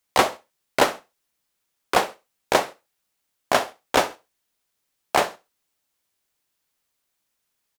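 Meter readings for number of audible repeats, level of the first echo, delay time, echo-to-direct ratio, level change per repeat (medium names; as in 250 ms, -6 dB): 2, -20.0 dB, 66 ms, -19.5 dB, -10.5 dB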